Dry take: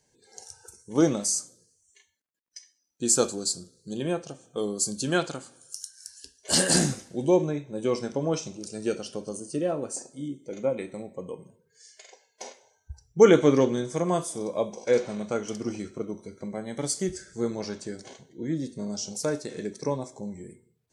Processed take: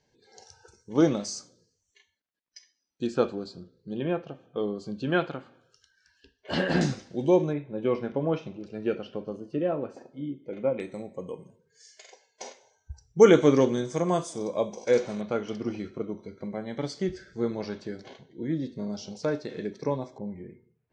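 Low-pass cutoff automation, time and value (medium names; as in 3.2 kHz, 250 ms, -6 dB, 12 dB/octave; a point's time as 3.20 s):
low-pass 24 dB/octave
5 kHz
from 3.07 s 3 kHz
from 6.81 s 5.3 kHz
from 7.53 s 3 kHz
from 10.80 s 7.1 kHz
from 15.21 s 4.3 kHz
from 20.18 s 2.6 kHz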